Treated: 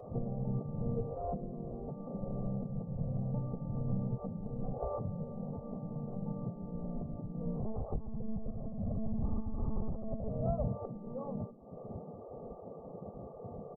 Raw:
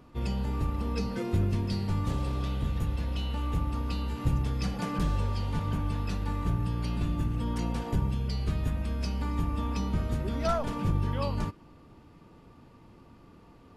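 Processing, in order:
Butterworth low-pass 980 Hz 48 dB per octave
spectral tilt −4.5 dB per octave
downward compressor 12 to 1, threshold −28 dBFS, peak gain reduction 24.5 dB
tuned comb filter 170 Hz, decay 0.79 s, harmonics all, mix 40%
hum removal 45.82 Hz, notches 7
gate on every frequency bin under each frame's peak −15 dB weak
0:07.60–0:10.30: one-pitch LPC vocoder at 8 kHz 220 Hz
comb filter 1.6 ms, depth 86%
level +13 dB

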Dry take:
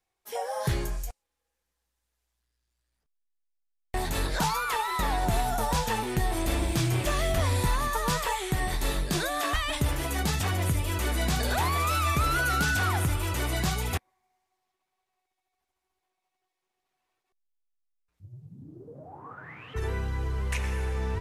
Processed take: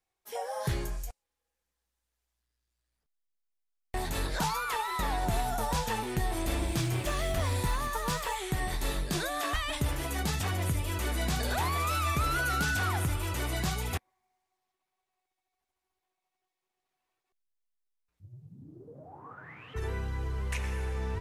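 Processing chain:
0:06.81–0:08.36: mu-law and A-law mismatch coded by A
level −3.5 dB

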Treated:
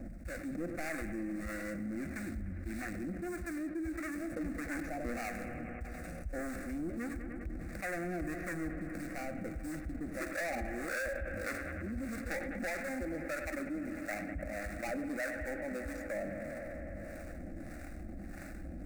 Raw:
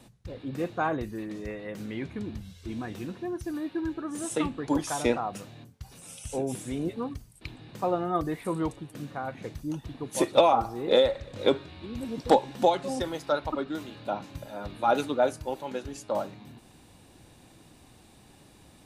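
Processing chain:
running median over 41 samples
in parallel at −3 dB: sample-rate reduction 8,400 Hz, jitter 20%
on the sum: soft clipping −22 dBFS, distortion −7 dB
octave-band graphic EQ 125/250/500/1,000/2,000 Hz −4/−8/−4/−10/+6 dB
two-band tremolo in antiphase 1.6 Hz, depth 70%, crossover 760 Hz
high-shelf EQ 8,700 Hz −4 dB
phaser with its sweep stopped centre 630 Hz, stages 8
bucket-brigade delay 100 ms, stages 2,048, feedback 80%, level −15.5 dB
envelope flattener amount 70%
level −2 dB

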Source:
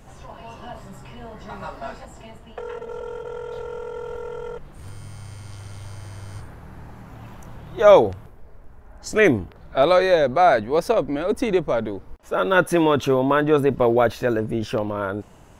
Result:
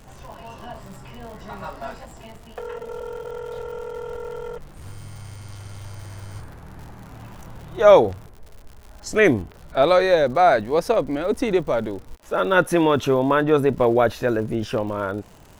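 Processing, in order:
surface crackle 130 per second −36 dBFS

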